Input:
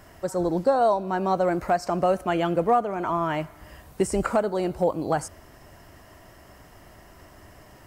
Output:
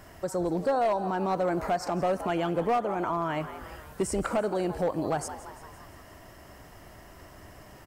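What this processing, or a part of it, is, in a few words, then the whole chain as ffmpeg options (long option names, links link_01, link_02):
clipper into limiter: -filter_complex "[0:a]asplit=6[link_01][link_02][link_03][link_04][link_05][link_06];[link_02]adelay=171,afreqshift=100,volume=-16.5dB[link_07];[link_03]adelay=342,afreqshift=200,volume=-21.4dB[link_08];[link_04]adelay=513,afreqshift=300,volume=-26.3dB[link_09];[link_05]adelay=684,afreqshift=400,volume=-31.1dB[link_10];[link_06]adelay=855,afreqshift=500,volume=-36dB[link_11];[link_01][link_07][link_08][link_09][link_10][link_11]amix=inputs=6:normalize=0,asoftclip=type=hard:threshold=-16dB,alimiter=limit=-20.5dB:level=0:latency=1:release=98"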